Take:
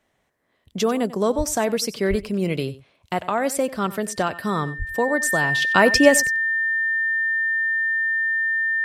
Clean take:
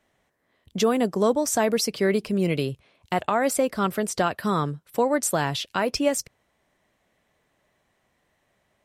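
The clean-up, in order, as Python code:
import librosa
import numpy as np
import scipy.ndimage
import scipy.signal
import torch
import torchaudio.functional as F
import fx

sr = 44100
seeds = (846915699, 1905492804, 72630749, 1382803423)

y = fx.notch(x, sr, hz=1800.0, q=30.0)
y = fx.highpass(y, sr, hz=140.0, slope=24, at=(1.37, 1.49), fade=0.02)
y = fx.highpass(y, sr, hz=140.0, slope=24, at=(2.09, 2.21), fade=0.02)
y = fx.highpass(y, sr, hz=140.0, slope=24, at=(4.78, 4.9), fade=0.02)
y = fx.fix_echo_inverse(y, sr, delay_ms=93, level_db=-17.0)
y = fx.gain(y, sr, db=fx.steps((0.0, 0.0), (5.62, -8.5)))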